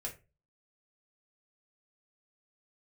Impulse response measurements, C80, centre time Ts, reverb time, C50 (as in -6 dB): 19.0 dB, 15 ms, 0.30 s, 13.0 dB